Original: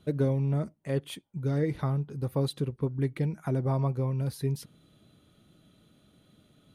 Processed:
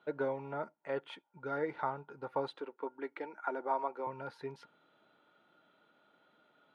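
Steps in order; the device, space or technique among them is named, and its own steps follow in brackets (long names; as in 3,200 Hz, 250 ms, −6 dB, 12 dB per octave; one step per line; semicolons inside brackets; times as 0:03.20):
tin-can telephone (band-pass filter 550–2,200 Hz; hollow resonant body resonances 900/1,400 Hz, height 14 dB, ringing for 45 ms)
0:02.55–0:04.07: Chebyshev high-pass filter 280 Hz, order 3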